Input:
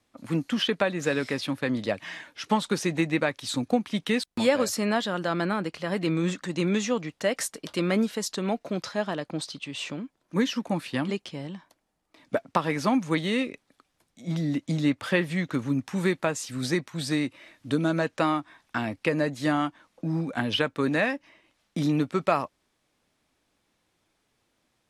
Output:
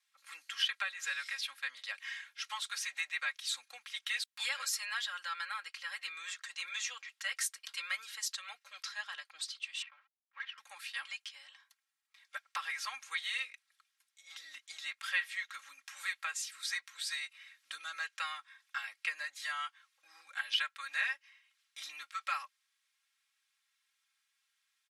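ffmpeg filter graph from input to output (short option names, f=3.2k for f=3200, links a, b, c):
-filter_complex "[0:a]asettb=1/sr,asplit=3[a][b][c];[a]atrim=end=9.824[d];[b]atrim=start=9.82:end=10.58,asetpts=PTS-STARTPTS,afade=t=in:d=0.004:c=qsin,afade=t=out:st=0.756:d=0.004:c=qsin,adynamicsmooth=sensitivity=2.5:basefreq=1.2k,aeval=exprs='sgn(val(0))*max(abs(val(0))-0.00126,0)':c=same,highpass=780,lowpass=2.6k[e];[c]atrim=start=10.576[f];[d][e]acrossfade=d=0.004:c1=hsin:c2=qsin[g];[g][f]acrossfade=d=0.004:c1=qsin:c2=hsin,highpass=f=1.4k:w=0.5412,highpass=f=1.4k:w=1.3066,aecho=1:1:3.7:0.84,volume=-6dB"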